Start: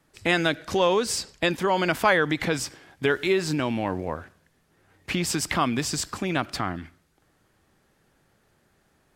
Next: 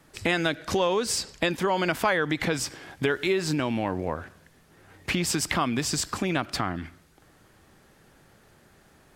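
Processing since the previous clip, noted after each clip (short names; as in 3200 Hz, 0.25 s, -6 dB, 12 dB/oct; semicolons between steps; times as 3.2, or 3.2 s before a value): compressor 2:1, threshold -38 dBFS, peak gain reduction 12.5 dB; gain +8 dB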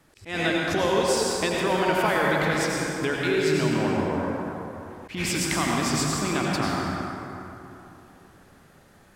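reverb RT60 3.1 s, pre-delay 78 ms, DRR -3.5 dB; auto swell 0.139 s; gain -2.5 dB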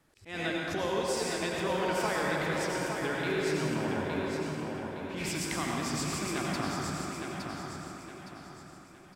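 feedback echo 0.864 s, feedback 38%, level -5.5 dB; gain -8.5 dB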